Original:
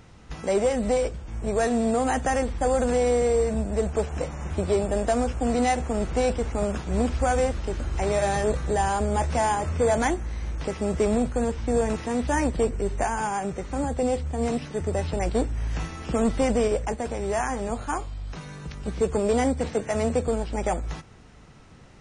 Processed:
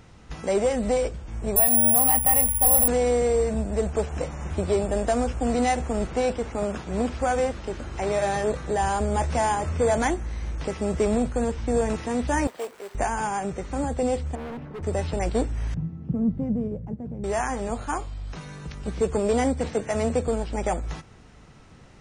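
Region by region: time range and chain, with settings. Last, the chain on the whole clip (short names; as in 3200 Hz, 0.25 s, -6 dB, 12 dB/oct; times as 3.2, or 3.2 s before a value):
1.56–2.88 LPF 8400 Hz + careless resampling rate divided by 4×, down filtered, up zero stuff + fixed phaser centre 1500 Hz, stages 6
6.07–8.82 HPF 130 Hz 6 dB/oct + high shelf 6600 Hz -5 dB
12.47–12.95 short-mantissa float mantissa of 2-bit + HPF 710 Hz + high shelf 2500 Hz -10 dB
14.35–14.83 LPF 1200 Hz + hard clip -33 dBFS
15.74–17.24 band-pass 150 Hz, Q 1.6 + bell 150 Hz +8.5 dB 1.7 oct
whole clip: dry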